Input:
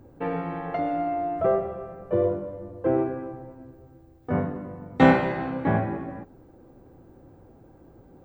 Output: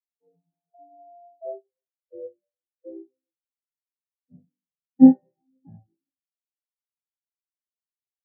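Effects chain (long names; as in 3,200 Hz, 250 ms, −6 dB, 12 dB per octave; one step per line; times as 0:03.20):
every bin expanded away from the loudest bin 4 to 1
level +2.5 dB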